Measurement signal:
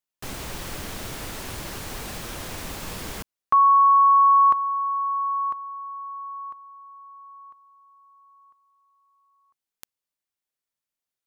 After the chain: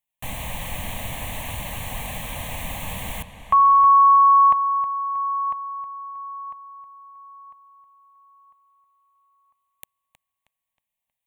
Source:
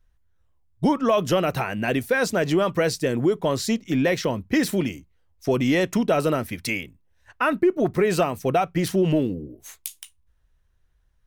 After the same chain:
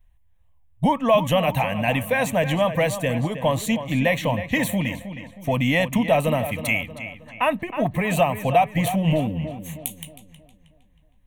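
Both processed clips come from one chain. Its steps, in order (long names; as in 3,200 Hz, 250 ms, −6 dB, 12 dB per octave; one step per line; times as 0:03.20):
phaser with its sweep stopped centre 1,400 Hz, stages 6
feedback echo with a low-pass in the loop 316 ms, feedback 43%, low-pass 5,000 Hz, level −11 dB
level +5.5 dB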